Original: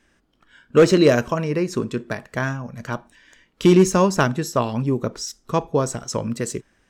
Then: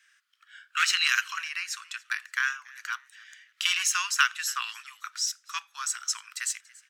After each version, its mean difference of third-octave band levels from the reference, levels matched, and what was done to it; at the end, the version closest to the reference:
20.0 dB: Butterworth high-pass 1,300 Hz 48 dB per octave
dynamic equaliser 2,800 Hz, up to +6 dB, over −45 dBFS, Q 3.9
echo with shifted repeats 283 ms, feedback 30%, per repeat +140 Hz, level −23 dB
level +2 dB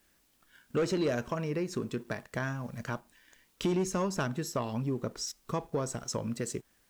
4.5 dB: bit-depth reduction 10 bits, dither triangular
leveller curve on the samples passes 1
downward compressor 2 to 1, threshold −25 dBFS, peak gain reduction 9 dB
level −8.5 dB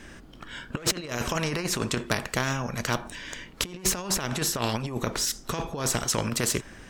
13.0 dB: low-shelf EQ 160 Hz +9 dB
compressor whose output falls as the input rises −21 dBFS, ratio −0.5
every bin compressed towards the loudest bin 2 to 1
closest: second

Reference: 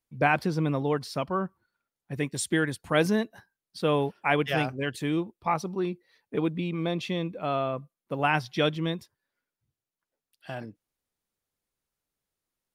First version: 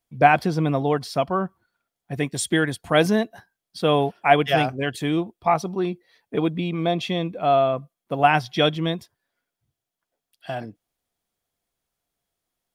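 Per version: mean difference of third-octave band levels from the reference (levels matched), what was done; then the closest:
1.5 dB: hollow resonant body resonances 700/3,300 Hz, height 10 dB
level +4.5 dB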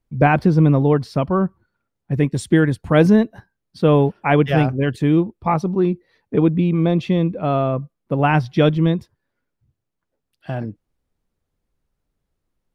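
5.0 dB: spectral tilt −3 dB per octave
level +6.5 dB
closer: first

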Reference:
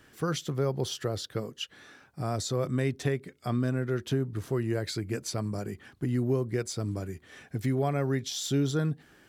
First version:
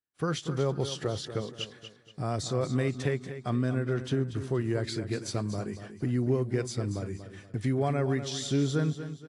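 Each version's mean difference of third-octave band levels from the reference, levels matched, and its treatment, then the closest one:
5.0 dB: noise gate −49 dBFS, range −42 dB
parametric band 7,200 Hz −3 dB 0.96 octaves
on a send: repeating echo 237 ms, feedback 38%, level −11 dB
on the sum: AAC 48 kbit/s 22,050 Hz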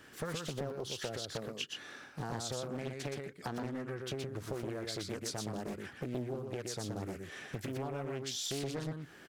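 9.5 dB: low-shelf EQ 110 Hz −10 dB
downward compressor 12 to 1, threshold −38 dBFS, peak gain reduction 14.5 dB
on a send: single-tap delay 121 ms −4 dB
on the sum: highs frequency-modulated by the lows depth 0.93 ms
level +2.5 dB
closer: first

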